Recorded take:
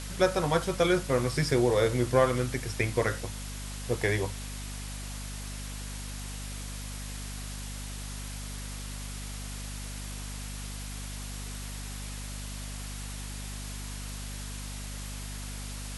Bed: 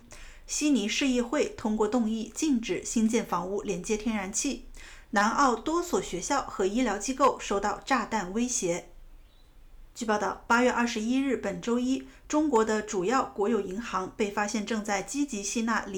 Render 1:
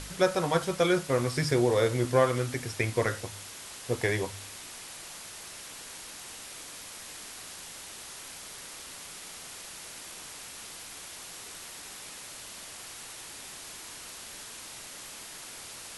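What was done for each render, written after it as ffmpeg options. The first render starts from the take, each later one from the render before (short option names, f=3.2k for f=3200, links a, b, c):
-af "bandreject=f=50:t=h:w=4,bandreject=f=100:t=h:w=4,bandreject=f=150:t=h:w=4,bandreject=f=200:t=h:w=4,bandreject=f=250:t=h:w=4"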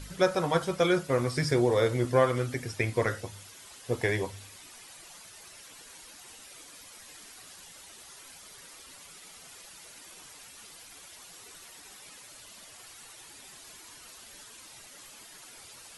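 -af "afftdn=nr=10:nf=-45"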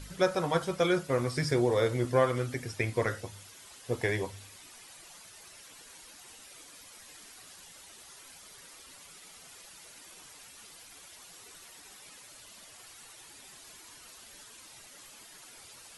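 -af "volume=-2dB"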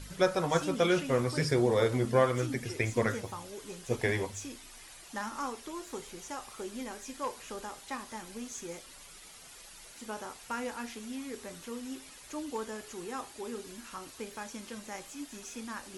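-filter_complex "[1:a]volume=-13.5dB[a];[0:a][a]amix=inputs=2:normalize=0"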